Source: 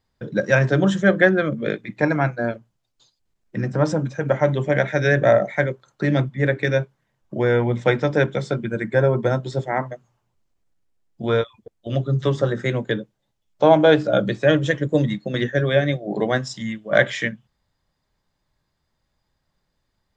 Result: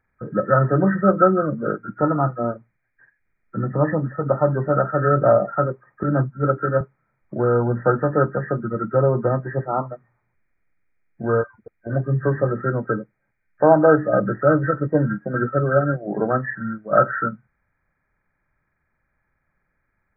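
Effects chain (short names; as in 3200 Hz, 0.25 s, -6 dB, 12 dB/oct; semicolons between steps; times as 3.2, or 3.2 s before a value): nonlinear frequency compression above 1200 Hz 4:1; 6.03–6.81 three-band expander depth 100%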